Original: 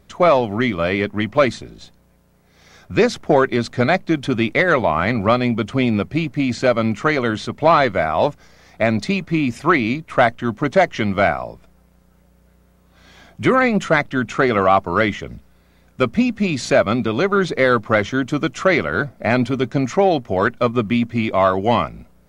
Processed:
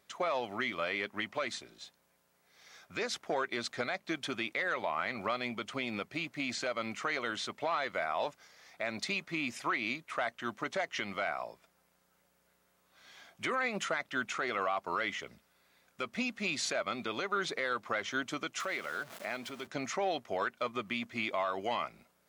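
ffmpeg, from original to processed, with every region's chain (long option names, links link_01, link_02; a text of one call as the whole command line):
ffmpeg -i in.wav -filter_complex "[0:a]asettb=1/sr,asplit=3[link_01][link_02][link_03];[link_01]atrim=end=18.604[link_04];[link_02]atrim=start=18.6:end=19.67,asetpts=PTS-STARTPTS,afade=type=in:duration=0.004:curve=qsin,afade=type=out:start_time=1.066:duration=0.004:curve=qsin,aeval=exprs='val(0)+0.5*0.0316*sgn(val(0))':channel_layout=same,highpass=120,acompressor=threshold=-29dB:ratio=2:attack=3.2:release=140:knee=1:detection=peak[link_05];[link_03]atrim=start=19.666[link_06];[link_04][link_05]acrossfade=duration=0.004:curve1=hsin:curve2=qsin[link_07];[link_07][link_06]acrossfade=duration=0.004:curve1=qsin:curve2=hsin,highpass=frequency=1200:poles=1,alimiter=limit=-17dB:level=0:latency=1:release=107,volume=-6dB" out.wav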